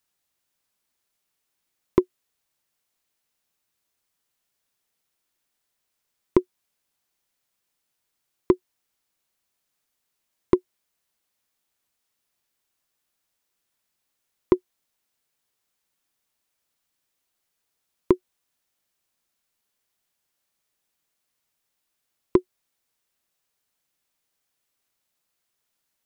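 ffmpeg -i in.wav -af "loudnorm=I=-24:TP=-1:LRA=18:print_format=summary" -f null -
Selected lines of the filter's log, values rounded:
Input Integrated:    -26.0 LUFS
Input True Peak:      -4.7 dBTP
Input LRA:             3.0 LU
Input Threshold:     -36.4 LUFS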